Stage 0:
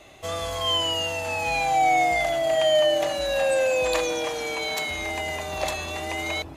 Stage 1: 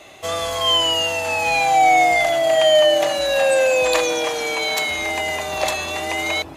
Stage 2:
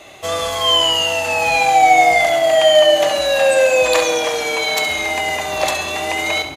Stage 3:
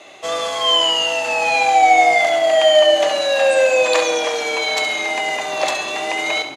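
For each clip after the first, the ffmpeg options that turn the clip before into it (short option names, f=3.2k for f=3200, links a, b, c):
-af "highpass=f=97:p=1,lowshelf=f=340:g=-4.5,volume=7dB"
-af "aecho=1:1:68|136|204|272|340|408:0.335|0.174|0.0906|0.0471|0.0245|0.0127,volume=2.5dB"
-af "highpass=230,lowpass=7.9k,volume=-1dB"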